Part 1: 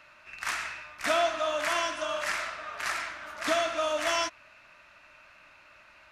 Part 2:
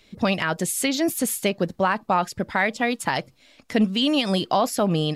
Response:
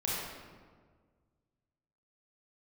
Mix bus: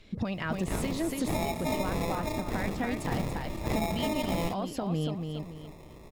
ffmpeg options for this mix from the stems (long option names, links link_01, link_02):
-filter_complex "[0:a]acrusher=samples=29:mix=1:aa=0.000001,adelay=250,volume=2.5dB[link_01];[1:a]aemphasis=mode=reproduction:type=cd,acompressor=threshold=-27dB:ratio=4,volume=-1.5dB,asplit=2[link_02][link_03];[link_03]volume=-6dB,aecho=0:1:284|568|852|1136:1|0.26|0.0676|0.0176[link_04];[link_01][link_02][link_04]amix=inputs=3:normalize=0,lowshelf=frequency=220:gain=9,alimiter=limit=-20dB:level=0:latency=1:release=449"